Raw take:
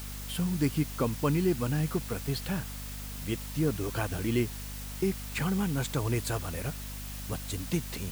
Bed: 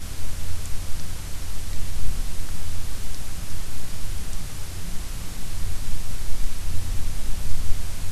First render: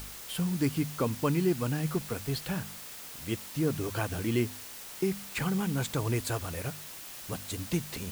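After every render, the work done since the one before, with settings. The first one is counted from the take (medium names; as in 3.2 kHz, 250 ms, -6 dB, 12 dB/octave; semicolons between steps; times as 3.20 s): de-hum 50 Hz, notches 5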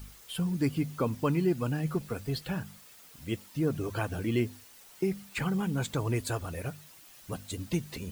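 noise reduction 11 dB, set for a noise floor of -44 dBFS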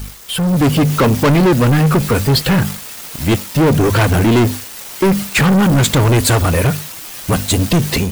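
waveshaping leveller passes 5; level rider gain up to 8.5 dB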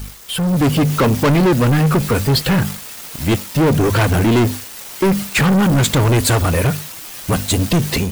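trim -2 dB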